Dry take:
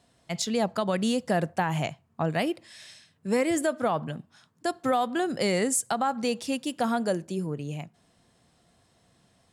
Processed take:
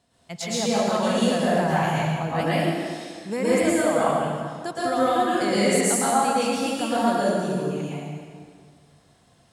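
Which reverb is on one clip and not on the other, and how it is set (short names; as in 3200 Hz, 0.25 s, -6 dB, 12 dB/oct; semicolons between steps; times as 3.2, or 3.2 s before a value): plate-style reverb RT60 1.9 s, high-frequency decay 0.8×, pre-delay 0.1 s, DRR -9 dB; gain -4 dB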